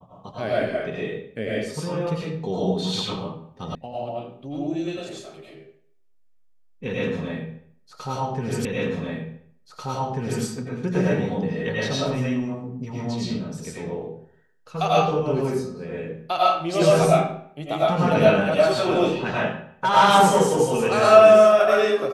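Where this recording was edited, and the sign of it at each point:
0:03.75: cut off before it has died away
0:08.65: the same again, the last 1.79 s

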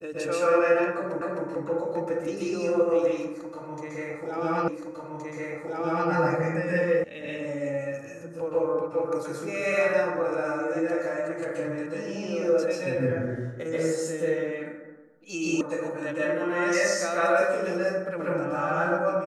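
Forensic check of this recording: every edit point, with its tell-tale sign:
0:01.21: the same again, the last 0.26 s
0:04.68: the same again, the last 1.42 s
0:07.04: cut off before it has died away
0:15.61: cut off before it has died away

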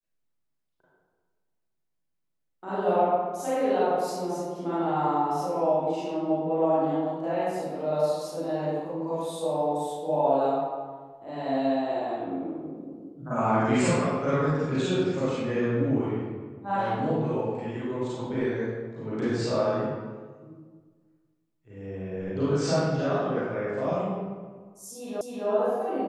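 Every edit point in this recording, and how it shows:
0:25.21: the same again, the last 0.26 s

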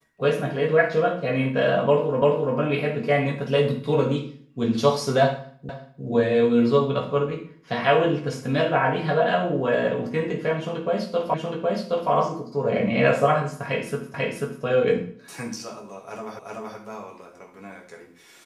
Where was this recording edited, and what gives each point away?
0:02.22: the same again, the last 0.34 s
0:05.69: the same again, the last 0.35 s
0:11.34: the same again, the last 0.77 s
0:14.14: the same again, the last 0.49 s
0:16.39: the same again, the last 0.38 s

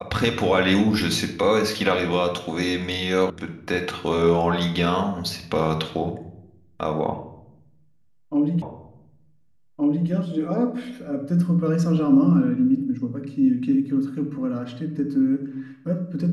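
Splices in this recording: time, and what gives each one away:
0:03.30: cut off before it has died away
0:08.62: the same again, the last 1.47 s

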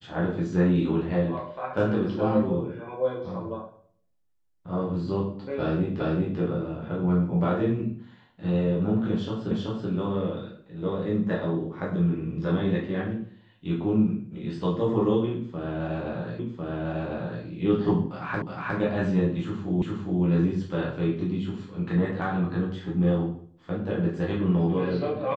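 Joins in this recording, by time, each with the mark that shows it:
0:06.00: the same again, the last 0.39 s
0:09.51: the same again, the last 0.38 s
0:16.39: the same again, the last 1.05 s
0:18.42: the same again, the last 0.36 s
0:19.82: the same again, the last 0.41 s

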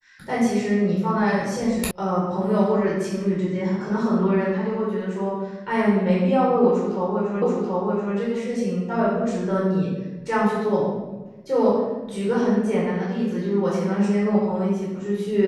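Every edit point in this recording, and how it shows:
0:01.91: cut off before it has died away
0:07.42: the same again, the last 0.73 s

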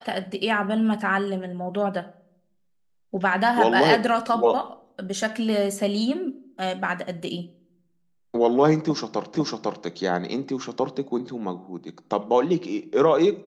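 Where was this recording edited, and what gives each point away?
0:09.35: the same again, the last 0.5 s

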